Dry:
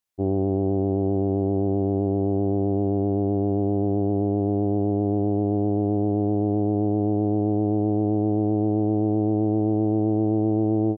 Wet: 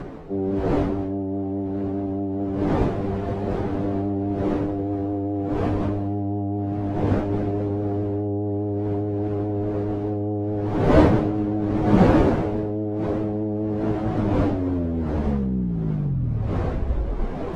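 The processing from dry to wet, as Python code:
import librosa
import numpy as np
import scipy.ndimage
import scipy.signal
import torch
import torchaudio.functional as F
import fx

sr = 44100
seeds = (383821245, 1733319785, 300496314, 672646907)

y = fx.tape_stop_end(x, sr, length_s=2.12)
y = fx.dmg_wind(y, sr, seeds[0], corner_hz=430.0, level_db=-24.0)
y = fx.stretch_vocoder_free(y, sr, factor=1.6)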